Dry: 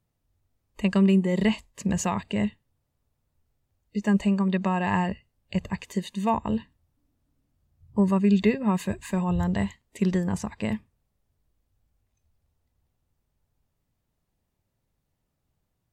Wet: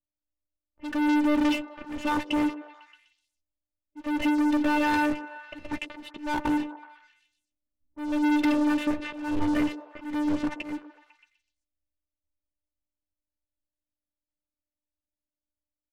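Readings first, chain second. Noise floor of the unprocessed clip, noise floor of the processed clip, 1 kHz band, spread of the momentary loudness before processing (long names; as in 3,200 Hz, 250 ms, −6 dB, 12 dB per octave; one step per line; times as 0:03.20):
−78 dBFS, below −85 dBFS, +1.0 dB, 11 LU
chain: hum removal 233.8 Hz, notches 2
phases set to zero 297 Hz
Chebyshev low-pass filter 3,000 Hz, order 3
dynamic equaliser 290 Hz, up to +3 dB, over −34 dBFS, Q 2.5
leveller curve on the samples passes 5
low-pass that shuts in the quiet parts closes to 720 Hz, open at −16.5 dBFS
volume swells 283 ms
in parallel at −9.5 dB: soft clipping −26 dBFS, distortion −9 dB
on the sum: double-tracking delay 12 ms −12 dB
on a send: echo through a band-pass that steps 125 ms, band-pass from 430 Hz, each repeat 0.7 octaves, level −10.5 dB
on the sum: level −8 dB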